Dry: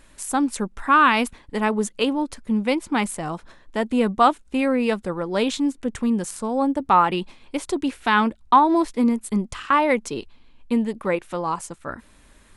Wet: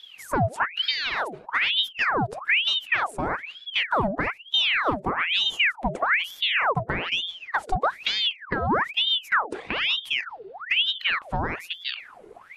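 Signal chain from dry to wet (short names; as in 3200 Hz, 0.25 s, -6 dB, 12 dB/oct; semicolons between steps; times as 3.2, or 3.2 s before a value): bin magnitudes rounded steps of 15 dB; dynamic EQ 940 Hz, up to -4 dB, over -27 dBFS, Q 1.4; compressor, threshold -24 dBFS, peak gain reduction 10.5 dB; tilt shelf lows +9 dB, about 1200 Hz; notches 60/120/180/240 Hz; ring modulator with a swept carrier 1900 Hz, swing 80%, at 1.1 Hz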